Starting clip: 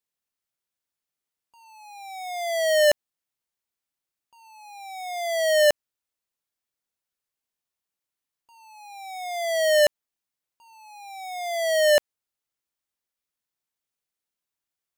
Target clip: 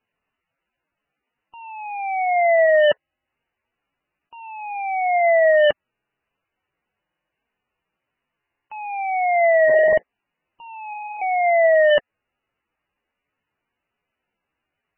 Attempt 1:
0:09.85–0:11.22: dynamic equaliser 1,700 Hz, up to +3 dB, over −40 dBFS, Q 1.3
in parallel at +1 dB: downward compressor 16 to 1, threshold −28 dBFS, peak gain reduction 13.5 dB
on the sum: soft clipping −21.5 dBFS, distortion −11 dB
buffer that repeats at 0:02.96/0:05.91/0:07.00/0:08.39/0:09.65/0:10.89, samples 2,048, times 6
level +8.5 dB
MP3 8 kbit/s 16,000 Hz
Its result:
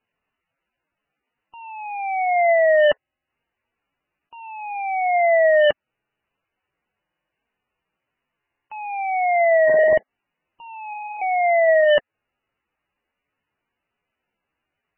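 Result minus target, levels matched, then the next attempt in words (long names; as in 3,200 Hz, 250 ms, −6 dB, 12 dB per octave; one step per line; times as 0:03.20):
downward compressor: peak gain reduction +6 dB
0:09.85–0:11.22: dynamic equaliser 1,700 Hz, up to +3 dB, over −40 dBFS, Q 1.3
in parallel at +1 dB: downward compressor 16 to 1, threshold −21.5 dBFS, peak gain reduction 7.5 dB
on the sum: soft clipping −21.5 dBFS, distortion −9 dB
buffer that repeats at 0:02.96/0:05.91/0:07.00/0:08.39/0:09.65/0:10.89, samples 2,048, times 6
level +8.5 dB
MP3 8 kbit/s 16,000 Hz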